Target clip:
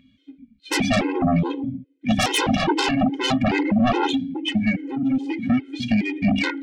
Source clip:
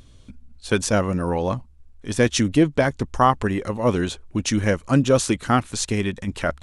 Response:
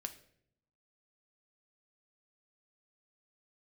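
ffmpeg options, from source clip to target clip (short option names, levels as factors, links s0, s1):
-filter_complex "[0:a]highshelf=f=6400:g=-11.5,bandreject=f=50:t=h:w=6,bandreject=f=100:t=h:w=6,bandreject=f=150:t=h:w=6,bandreject=f=200:t=h:w=6,bandreject=f=250:t=h:w=6,bandreject=f=300:t=h:w=6[s0];[1:a]atrim=start_sample=2205[s1];[s0][s1]afir=irnorm=-1:irlink=0,acontrast=37,asplit=3[s2][s3][s4];[s2]bandpass=f=270:t=q:w=8,volume=1[s5];[s3]bandpass=f=2290:t=q:w=8,volume=0.501[s6];[s4]bandpass=f=3010:t=q:w=8,volume=0.355[s7];[s5][s6][s7]amix=inputs=3:normalize=0,asoftclip=type=tanh:threshold=0.126,equalizer=f=380:w=2.1:g=-11.5,asettb=1/sr,asplit=3[s8][s9][s10];[s8]atrim=end=4.214[s11];[s9]atrim=start=4.21:end=6.27,asetpts=PTS-STARTPTS,afade=t=in:d=0.004:c=qsin,afade=t=out:st=2.056:d=0.004:c=qsin,acompressor=threshold=0.0112:ratio=16[s12];[s10]atrim=start=6.266[s13];[s11][s12]acrossfade=d=0.004:c1=hsin:c2=qsin[s14];[s14][s13]acrossfade=d=0.004:c1=qsin:c2=hsin,afftdn=nr=16:nf=-46,aeval=exprs='0.0841*sin(PI/2*5.62*val(0)/0.0841)':c=same,afftfilt=real='re*gt(sin(2*PI*2.4*pts/sr)*(1-2*mod(floor(b*sr/1024/270),2)),0)':imag='im*gt(sin(2*PI*2.4*pts/sr)*(1-2*mod(floor(b*sr/1024/270),2)),0)':win_size=1024:overlap=0.75,volume=2.51"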